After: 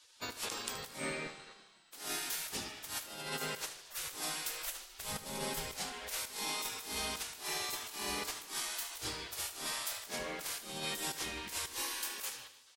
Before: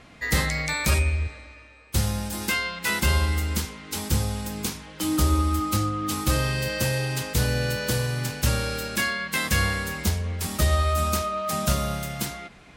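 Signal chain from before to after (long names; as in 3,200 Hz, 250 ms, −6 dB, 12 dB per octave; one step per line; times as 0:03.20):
gate on every frequency bin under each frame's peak −20 dB weak
0:04.50–0:05.70: low-shelf EQ 70 Hz +11 dB
compressor whose output falls as the input rises −37 dBFS, ratio −0.5
on a send: repeating echo 75 ms, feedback 56%, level −13.5 dB
on the sum: level −2.5 dB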